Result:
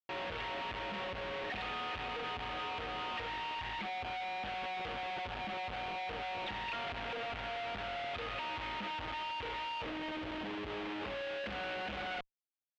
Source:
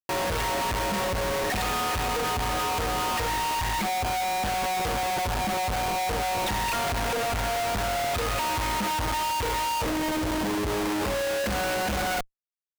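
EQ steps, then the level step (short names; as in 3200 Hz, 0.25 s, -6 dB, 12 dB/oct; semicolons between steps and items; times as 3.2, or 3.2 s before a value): ladder low-pass 3700 Hz, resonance 40%; low shelf 130 Hz -7.5 dB; notch 1000 Hz, Q 18; -4.5 dB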